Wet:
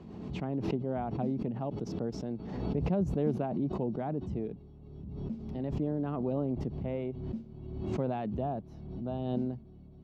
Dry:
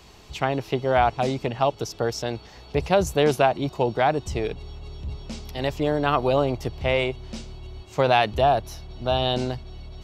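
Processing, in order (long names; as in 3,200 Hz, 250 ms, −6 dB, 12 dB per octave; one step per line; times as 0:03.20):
resonant band-pass 210 Hz, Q 2.4
background raised ahead of every attack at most 38 dB per second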